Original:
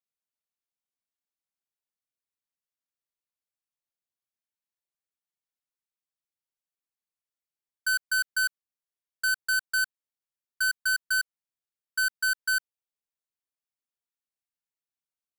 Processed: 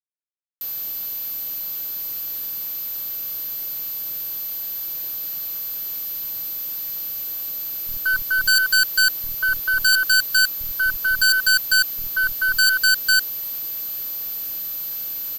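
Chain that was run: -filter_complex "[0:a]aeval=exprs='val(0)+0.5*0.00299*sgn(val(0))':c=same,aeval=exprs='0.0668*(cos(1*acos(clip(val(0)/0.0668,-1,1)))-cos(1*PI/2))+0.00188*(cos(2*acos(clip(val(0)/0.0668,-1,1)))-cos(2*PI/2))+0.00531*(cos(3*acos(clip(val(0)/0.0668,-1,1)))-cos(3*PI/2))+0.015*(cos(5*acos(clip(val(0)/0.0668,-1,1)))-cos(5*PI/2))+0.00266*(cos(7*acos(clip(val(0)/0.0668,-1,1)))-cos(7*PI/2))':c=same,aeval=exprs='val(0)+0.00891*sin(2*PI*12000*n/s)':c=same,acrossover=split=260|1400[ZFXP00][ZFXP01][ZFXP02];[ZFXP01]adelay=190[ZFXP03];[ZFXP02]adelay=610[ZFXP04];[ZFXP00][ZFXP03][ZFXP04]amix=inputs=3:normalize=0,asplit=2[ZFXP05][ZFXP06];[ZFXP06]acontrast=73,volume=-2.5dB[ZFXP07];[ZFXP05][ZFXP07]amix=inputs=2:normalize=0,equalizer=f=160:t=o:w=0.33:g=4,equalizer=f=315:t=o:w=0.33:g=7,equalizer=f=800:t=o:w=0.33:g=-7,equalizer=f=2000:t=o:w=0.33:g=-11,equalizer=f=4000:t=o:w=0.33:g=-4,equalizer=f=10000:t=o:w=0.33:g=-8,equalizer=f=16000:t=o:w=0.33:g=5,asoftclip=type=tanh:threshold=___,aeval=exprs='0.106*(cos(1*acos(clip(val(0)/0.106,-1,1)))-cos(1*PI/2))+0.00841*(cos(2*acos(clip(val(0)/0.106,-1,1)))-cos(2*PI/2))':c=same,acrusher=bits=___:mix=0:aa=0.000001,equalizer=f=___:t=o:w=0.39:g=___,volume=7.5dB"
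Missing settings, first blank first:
-19.5dB, 7, 4400, 7.5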